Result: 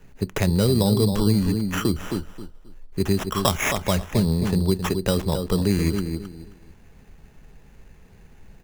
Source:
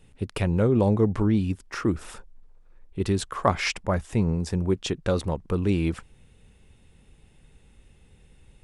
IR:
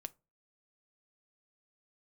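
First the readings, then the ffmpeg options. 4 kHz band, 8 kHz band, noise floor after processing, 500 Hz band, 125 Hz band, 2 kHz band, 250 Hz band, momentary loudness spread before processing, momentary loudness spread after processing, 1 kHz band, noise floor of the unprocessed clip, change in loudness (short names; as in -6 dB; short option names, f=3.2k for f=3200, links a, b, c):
+7.0 dB, +8.0 dB, -50 dBFS, +2.0 dB, +3.5 dB, +3.0 dB, +3.5 dB, 10 LU, 11 LU, +1.0 dB, -57 dBFS, +3.0 dB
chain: -filter_complex "[0:a]asplit=2[a][b];[b]adelay=266,lowpass=f=1.1k:p=1,volume=-7.5dB,asplit=2[c][d];[d]adelay=266,lowpass=f=1.1k:p=1,volume=0.24,asplit=2[e][f];[f]adelay=266,lowpass=f=1.1k:p=1,volume=0.24[g];[a][c][e][g]amix=inputs=4:normalize=0,acrusher=samples=10:mix=1:aa=0.000001,asplit=2[h][i];[1:a]atrim=start_sample=2205,asetrate=52920,aresample=44100[j];[i][j]afir=irnorm=-1:irlink=0,volume=9dB[k];[h][k]amix=inputs=2:normalize=0,acrossover=split=140|3000[l][m][n];[m]acompressor=threshold=-19dB:ratio=2.5[o];[l][o][n]amix=inputs=3:normalize=0,volume=-2.5dB"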